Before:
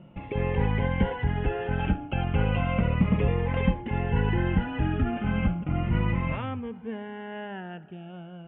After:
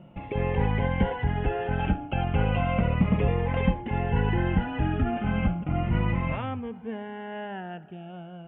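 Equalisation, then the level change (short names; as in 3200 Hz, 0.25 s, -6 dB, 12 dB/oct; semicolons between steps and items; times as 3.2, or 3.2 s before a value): bell 720 Hz +4.5 dB 0.48 oct; 0.0 dB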